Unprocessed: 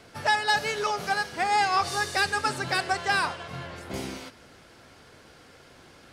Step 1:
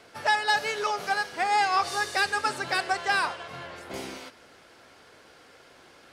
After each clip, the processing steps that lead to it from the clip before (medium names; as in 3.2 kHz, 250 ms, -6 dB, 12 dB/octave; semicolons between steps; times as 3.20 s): tone controls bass -10 dB, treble -2 dB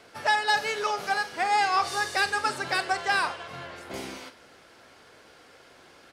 doubling 45 ms -14 dB